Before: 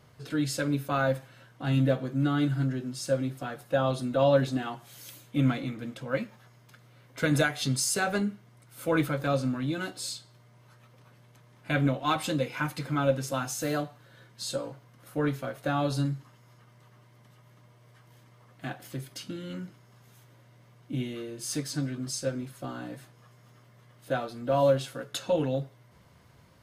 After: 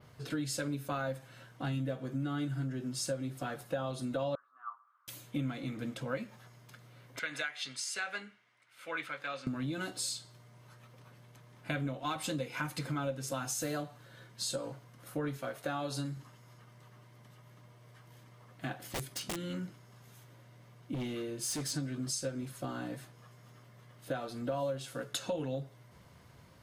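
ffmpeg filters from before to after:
ffmpeg -i in.wav -filter_complex "[0:a]asettb=1/sr,asplit=3[link_01][link_02][link_03];[link_01]atrim=end=1.764[link_04];[link_02]atrim=start=1.76:end=2.93,asetpts=PTS-STARTPTS,afade=type=in:duration=0.004:curve=qsin,afade=type=out:start_time=1.166:duration=0.004:curve=qsin,bandreject=frequency=4100:width=12[link_05];[link_03]atrim=start=2.926[link_06];[link_04][link_05]acrossfade=duration=0.004:curve1=hsin:curve2=qsin[link_07];[link_07][link_06]acrossfade=duration=0.004:curve1=qsin:curve2=hsin,asettb=1/sr,asplit=3[link_08][link_09][link_10];[link_08]atrim=end=4.354[link_11];[link_09]atrim=start=4.35:end=5.08,asetpts=PTS-STARTPTS,afade=type=in:duration=0.004:curve=qsin,afade=type=out:start_time=0.726:duration=0.004:curve=qsin,asuperpass=centerf=1200:order=4:qfactor=5.1[link_12];[link_10]atrim=start=5.076[link_13];[link_11][link_12]acrossfade=duration=0.004:curve1=hsin:curve2=qsin[link_14];[link_14][link_13]acrossfade=duration=0.004:curve1=qsin:curve2=hsin,asettb=1/sr,asplit=3[link_15][link_16][link_17];[link_15]atrim=end=7.194[link_18];[link_16]atrim=start=7.19:end=9.47,asetpts=PTS-STARTPTS,afade=type=in:duration=0.004:curve=qsin,afade=type=out:start_time=2.276:duration=0.004:curve=qsin,bandpass=frequency=2200:width_type=q:width=1.4[link_19];[link_17]atrim=start=9.466[link_20];[link_18][link_19]acrossfade=duration=0.004:curve1=hsin:curve2=qsin[link_21];[link_21][link_20]acrossfade=duration=0.004:curve1=qsin:curve2=hsin,asettb=1/sr,asplit=3[link_22][link_23][link_24];[link_22]atrim=end=15.374[link_25];[link_23]atrim=start=15.37:end=16.17,asetpts=PTS-STARTPTS,afade=type=in:duration=0.004:curve=qsin,afade=type=out:start_time=0.796:duration=0.004:curve=qsin,lowshelf=frequency=220:gain=-8.5[link_26];[link_24]atrim=start=16.166[link_27];[link_25][link_26]acrossfade=duration=0.004:curve1=hsin:curve2=qsin[link_28];[link_28][link_27]acrossfade=duration=0.004:curve1=qsin:curve2=hsin,asettb=1/sr,asplit=3[link_29][link_30][link_31];[link_29]atrim=end=18.794[link_32];[link_30]atrim=start=18.79:end=19.48,asetpts=PTS-STARTPTS,afade=type=in:duration=0.004:curve=qsin,afade=type=out:start_time=0.686:duration=0.004:curve=qsin,aeval=exprs='(mod(35.5*val(0)+1,2)-1)/35.5':channel_layout=same[link_33];[link_31]atrim=start=19.476[link_34];[link_32][link_33]acrossfade=duration=0.004:curve1=hsin:curve2=qsin[link_35];[link_35][link_34]acrossfade=duration=0.004:curve1=qsin:curve2=hsin,asettb=1/sr,asplit=3[link_36][link_37][link_38];[link_36]atrim=end=20.944[link_39];[link_37]atrim=start=20.94:end=21.72,asetpts=PTS-STARTPTS,afade=type=in:duration=0.004:curve=qsin,afade=type=out:start_time=0.776:duration=0.004:curve=qsin,volume=32.5dB,asoftclip=hard,volume=-32.5dB[link_40];[link_38]atrim=start=21.716[link_41];[link_39][link_40]acrossfade=duration=0.004:curve1=hsin:curve2=qsin[link_42];[link_42][link_41]acrossfade=duration=0.004:curve1=qsin:curve2=hsin,adynamicequalizer=threshold=0.00355:dfrequency=8100:dqfactor=0.84:tfrequency=8100:tqfactor=0.84:attack=5:release=100:ratio=0.375:range=2:mode=boostabove:tftype=bell,acompressor=threshold=-33dB:ratio=5" out.wav

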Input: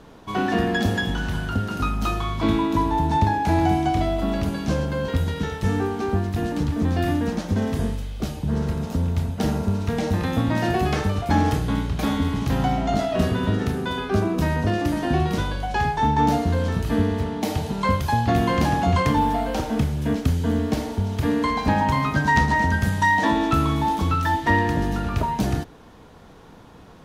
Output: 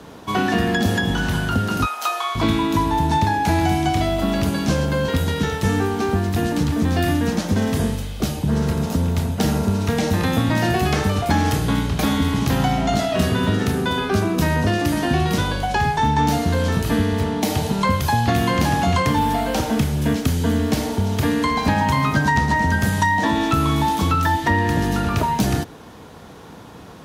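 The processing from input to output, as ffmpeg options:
ffmpeg -i in.wav -filter_complex "[0:a]asettb=1/sr,asplit=3[link_01][link_02][link_03];[link_01]atrim=end=1.854[link_04];[link_02]atrim=start=1.85:end=2.35,asetpts=PTS-STARTPTS,afade=type=in:duration=0.004:curve=qsin,afade=type=out:start_time=0.496:duration=0.004:curve=qsin,highpass=frequency=600:width=0.5412,highpass=frequency=600:width=1.3066[link_05];[link_03]atrim=start=2.346[link_06];[link_04][link_05]acrossfade=duration=0.004:curve1=hsin:curve2=qsin[link_07];[link_07][link_06]acrossfade=duration=0.004:curve1=qsin:curve2=hsin,highpass=68,highshelf=frequency=6100:gain=5.5,acrossover=split=180|1300[link_08][link_09][link_10];[link_08]acompressor=threshold=-26dB:ratio=4[link_11];[link_09]acompressor=threshold=-27dB:ratio=4[link_12];[link_10]acompressor=threshold=-31dB:ratio=4[link_13];[link_11][link_12][link_13]amix=inputs=3:normalize=0,volume=6.5dB" out.wav

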